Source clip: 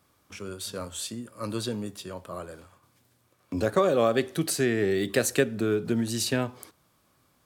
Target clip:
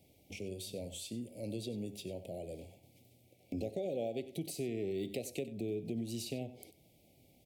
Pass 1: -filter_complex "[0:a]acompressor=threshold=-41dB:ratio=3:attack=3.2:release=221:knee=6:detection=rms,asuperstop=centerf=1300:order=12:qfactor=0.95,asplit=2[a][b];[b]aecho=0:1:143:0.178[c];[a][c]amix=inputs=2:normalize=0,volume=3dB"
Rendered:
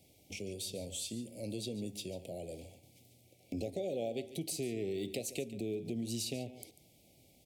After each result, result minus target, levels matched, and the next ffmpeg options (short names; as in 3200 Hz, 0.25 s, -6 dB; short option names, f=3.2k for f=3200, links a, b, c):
echo 49 ms late; 8000 Hz band +5.0 dB
-filter_complex "[0:a]acompressor=threshold=-41dB:ratio=3:attack=3.2:release=221:knee=6:detection=rms,asuperstop=centerf=1300:order=12:qfactor=0.95,asplit=2[a][b];[b]aecho=0:1:94:0.178[c];[a][c]amix=inputs=2:normalize=0,volume=3dB"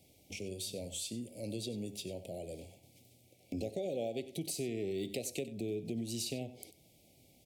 8000 Hz band +5.0 dB
-filter_complex "[0:a]acompressor=threshold=-41dB:ratio=3:attack=3.2:release=221:knee=6:detection=rms,asuperstop=centerf=1300:order=12:qfactor=0.95,equalizer=f=6.8k:t=o:w=2:g=-6.5,asplit=2[a][b];[b]aecho=0:1:94:0.178[c];[a][c]amix=inputs=2:normalize=0,volume=3dB"